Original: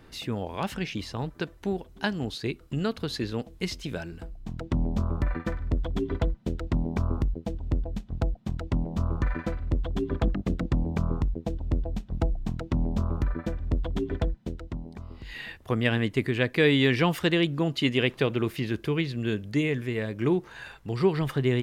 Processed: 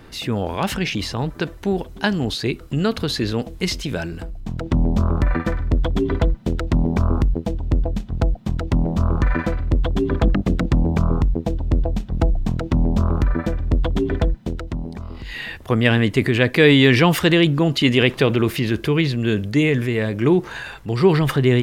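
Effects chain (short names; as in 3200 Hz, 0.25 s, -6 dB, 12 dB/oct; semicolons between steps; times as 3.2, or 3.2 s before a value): transient shaper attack -1 dB, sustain +5 dB; gain +8.5 dB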